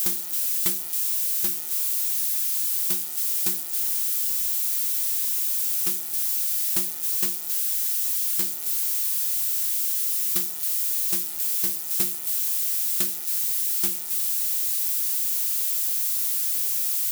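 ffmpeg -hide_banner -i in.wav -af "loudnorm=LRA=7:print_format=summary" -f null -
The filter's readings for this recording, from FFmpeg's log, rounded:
Input Integrated:    -22.1 LUFS
Input True Peak:      -8.3 dBTP
Input LRA:             0.5 LU
Input Threshold:     -32.1 LUFS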